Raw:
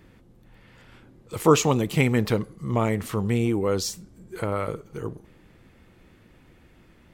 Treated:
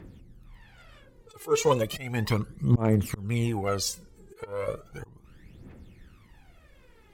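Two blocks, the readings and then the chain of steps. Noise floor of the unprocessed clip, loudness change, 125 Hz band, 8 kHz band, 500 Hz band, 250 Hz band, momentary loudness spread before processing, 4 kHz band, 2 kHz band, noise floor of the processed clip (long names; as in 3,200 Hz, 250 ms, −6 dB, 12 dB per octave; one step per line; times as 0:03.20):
−56 dBFS, −3.0 dB, −1.5 dB, −3.0 dB, −4.0 dB, −5.5 dB, 16 LU, −2.5 dB, −5.5 dB, −57 dBFS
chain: volume swells 277 ms
phase shifter 0.35 Hz, delay 2.5 ms, feedback 76%
harmonic generator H 7 −32 dB, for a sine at −7 dBFS
level −2.5 dB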